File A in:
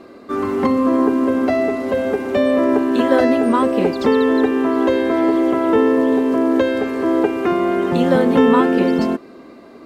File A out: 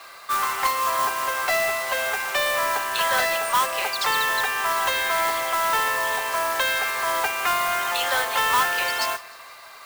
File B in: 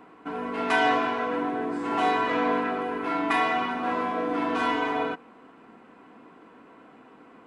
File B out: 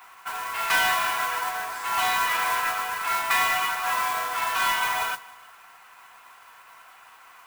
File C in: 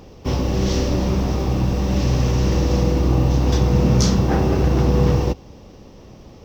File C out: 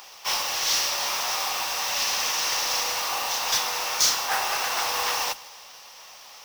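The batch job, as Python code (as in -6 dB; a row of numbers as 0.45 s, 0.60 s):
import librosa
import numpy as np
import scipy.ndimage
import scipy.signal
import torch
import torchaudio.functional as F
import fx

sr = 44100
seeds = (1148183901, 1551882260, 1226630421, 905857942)

p1 = scipy.signal.sosfilt(scipy.signal.butter(4, 820.0, 'highpass', fs=sr, output='sos'), x)
p2 = fx.tilt_eq(p1, sr, slope=2.5)
p3 = fx.rider(p2, sr, range_db=3, speed_s=0.5)
p4 = p2 + F.gain(torch.from_numpy(p3), 0.0).numpy()
p5 = 10.0 ** (-12.5 / 20.0) * np.tanh(p4 / 10.0 ** (-12.5 / 20.0))
p6 = fx.mod_noise(p5, sr, seeds[0], snr_db=10)
p7 = fx.echo_feedback(p6, sr, ms=156, feedback_pct=54, wet_db=-22)
y = F.gain(torch.from_numpy(p7), -2.0).numpy()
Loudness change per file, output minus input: -5.5 LU, +2.0 LU, -5.0 LU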